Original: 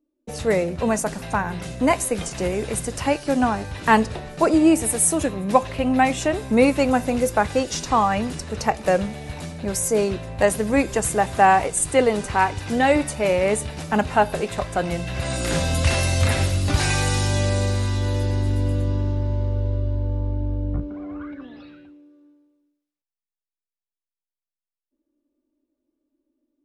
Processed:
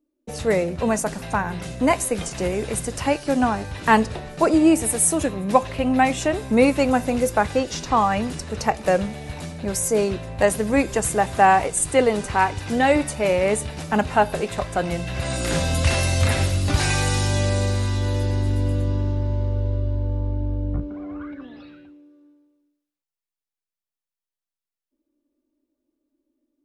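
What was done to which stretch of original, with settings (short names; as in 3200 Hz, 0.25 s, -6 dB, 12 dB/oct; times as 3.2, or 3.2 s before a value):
7.46–7.97 dynamic EQ 9600 Hz, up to -7 dB, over -44 dBFS, Q 0.78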